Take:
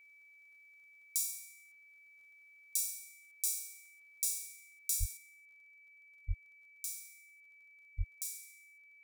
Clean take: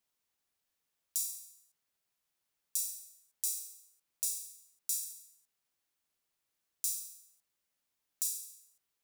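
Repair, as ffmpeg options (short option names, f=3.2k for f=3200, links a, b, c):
-filter_complex "[0:a]adeclick=t=4,bandreject=f=2.3k:w=30,asplit=3[a][b][c];[a]afade=t=out:st=4.99:d=0.02[d];[b]highpass=f=140:w=0.5412,highpass=f=140:w=1.3066,afade=t=in:st=4.99:d=0.02,afade=t=out:st=5.11:d=0.02[e];[c]afade=t=in:st=5.11:d=0.02[f];[d][e][f]amix=inputs=3:normalize=0,asplit=3[g][h][i];[g]afade=t=out:st=6.27:d=0.02[j];[h]highpass=f=140:w=0.5412,highpass=f=140:w=1.3066,afade=t=in:st=6.27:d=0.02,afade=t=out:st=6.39:d=0.02[k];[i]afade=t=in:st=6.39:d=0.02[l];[j][k][l]amix=inputs=3:normalize=0,asplit=3[m][n][o];[m]afade=t=out:st=7.97:d=0.02[p];[n]highpass=f=140:w=0.5412,highpass=f=140:w=1.3066,afade=t=in:st=7.97:d=0.02,afade=t=out:st=8.09:d=0.02[q];[o]afade=t=in:st=8.09:d=0.02[r];[p][q][r]amix=inputs=3:normalize=0,asetnsamples=n=441:p=0,asendcmd='5.17 volume volume 7dB',volume=0dB"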